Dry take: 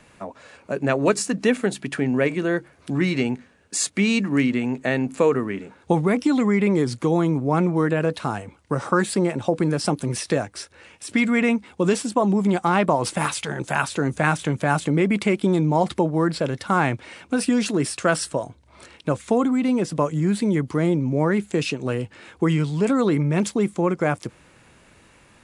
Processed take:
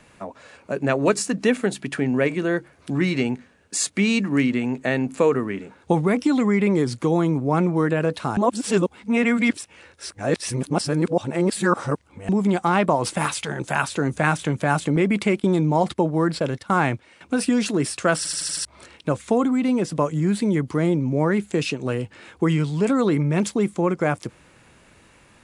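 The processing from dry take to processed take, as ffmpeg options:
-filter_complex "[0:a]asettb=1/sr,asplit=3[a][b][c];[a]atrim=end=14.964[d];[b]atrim=start=14.96:end=17.21,asetpts=PTS-STARTPTS,afade=t=in:d=0.004:c=qsin,afade=t=out:st=2.246:d=0.004:c=qsin,agate=range=-11dB:threshold=-35dB:ratio=16:release=100:detection=peak[e];[c]atrim=start=17.206[f];[d][e]acrossfade=d=0.004:c1=hsin:c2=qsin[g];[g][f]acrossfade=d=0.004:c1=qsin:c2=hsin,asplit=9[h][i][j][k][l][m][n][o][p];[h]atrim=end=8.372[q];[i]atrim=start=8.368:end=12.292,asetpts=PTS-STARTPTS,areverse[r];[j]atrim=start=12.288:end=18.252[s];[k]atrim=start=18.168:end=18.252[t];[l]atrim=start=18.168:end=18.252[u];[m]atrim=start=18.168:end=18.252[v];[n]atrim=start=18.168:end=18.252[w];[o]atrim=start=18.168:end=18.252[x];[p]atrim=start=18.648[y];[q][r]acrossfade=d=0.004:c1=hsin:c2=hsin[z];[z][s]acrossfade=d=0.004:c1=hsin:c2=hsin[aa];[aa][t]acrossfade=d=0.004:c1=hsin:c2=hsin[ab];[ab][u]acrossfade=d=0.004:c1=hsin:c2=hsin[ac];[ac][v]acrossfade=d=0.004:c1=hsin:c2=hsin[ad];[ad][w]acrossfade=d=0.004:c1=hsin:c2=hsin[ae];[ae][x]acrossfade=d=0.004:c1=hsin:c2=hsin[af];[af][y]acrossfade=d=0.004:c1=hsin:c2=hsin"

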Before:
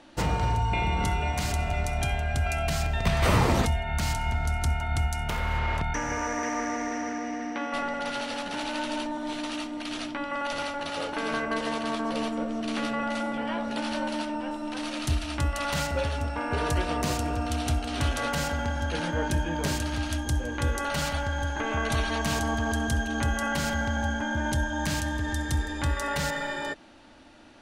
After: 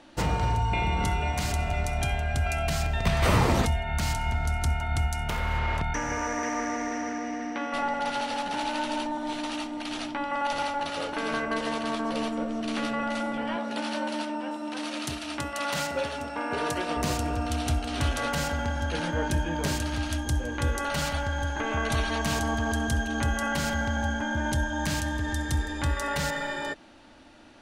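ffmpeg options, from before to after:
-filter_complex "[0:a]asettb=1/sr,asplit=3[a][b][c];[a]atrim=end=7.784[d];[b]atrim=start=7.78:end=10.88,asetpts=PTS-STARTPTS,afade=t=in:d=0.004:c=qsin,afade=t=out:st=3.096:d=0.004:c=qsin,equalizer=f=830:t=o:w=0.21:g=8[e];[c]atrim=start=10.876[f];[d][e]acrossfade=d=0.004:c1=hsin:c2=qsin[g];[g][f]acrossfade=d=0.004:c1=qsin:c2=hsin,asettb=1/sr,asplit=3[h][i][j];[h]atrim=end=13.564[k];[i]atrim=start=13.56:end=16.97,asetpts=PTS-STARTPTS,afade=t=in:d=0.004:c=qsin,afade=t=out:st=3.406:d=0.004:c=qsin,highpass=190[l];[j]atrim=start=16.966[m];[k][l]acrossfade=d=0.004:c1=hsin:c2=qsin[n];[n][m]acrossfade=d=0.004:c1=qsin:c2=hsin"

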